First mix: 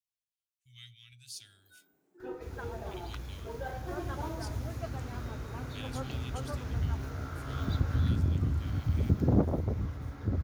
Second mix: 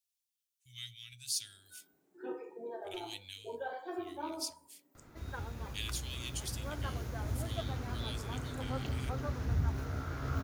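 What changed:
speech: add high shelf 3000 Hz +12 dB; second sound: entry +2.75 s

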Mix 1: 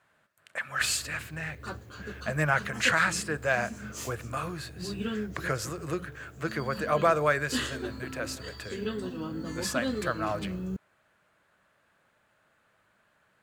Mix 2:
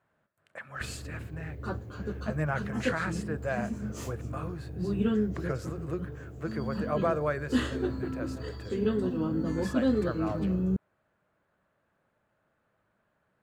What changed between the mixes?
speech -8.0 dB; master: add tilt shelf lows +7 dB, about 1300 Hz

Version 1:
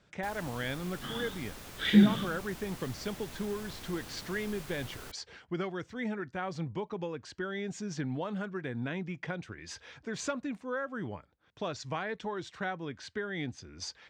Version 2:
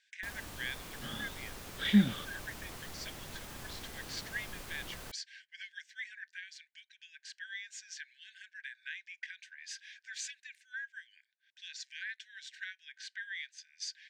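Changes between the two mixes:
speech: add brick-wall FIR high-pass 1500 Hz; reverb: off

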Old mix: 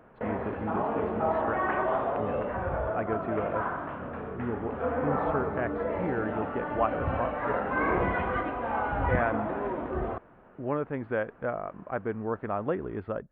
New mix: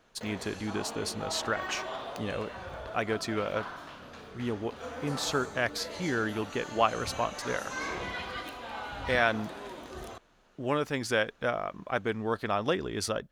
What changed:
background -12.0 dB; master: remove Gaussian blur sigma 5.1 samples

